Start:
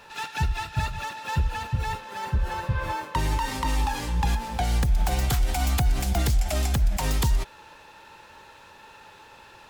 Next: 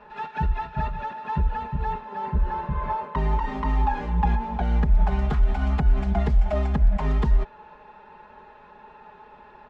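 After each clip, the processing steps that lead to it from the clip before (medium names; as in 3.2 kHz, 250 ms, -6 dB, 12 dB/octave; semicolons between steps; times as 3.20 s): low-pass 1.4 kHz 12 dB/octave; comb 4.8 ms, depth 99%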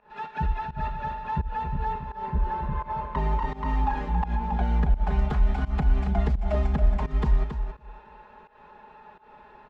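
feedback delay 275 ms, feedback 20%, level -8 dB; volume shaper 85 bpm, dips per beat 1, -19 dB, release 186 ms; trim -2.5 dB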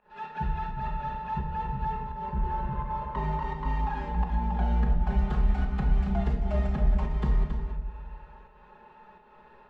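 simulated room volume 350 m³, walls mixed, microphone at 0.99 m; trim -5.5 dB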